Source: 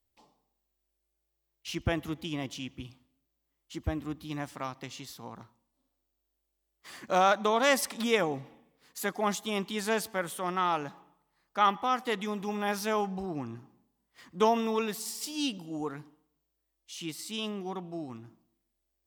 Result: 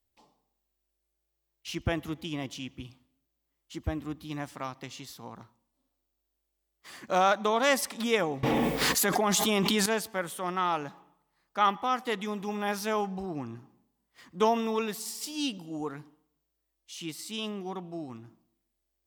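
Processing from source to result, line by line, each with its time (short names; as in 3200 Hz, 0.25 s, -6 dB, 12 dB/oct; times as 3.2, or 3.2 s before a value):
8.43–9.86 fast leveller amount 100%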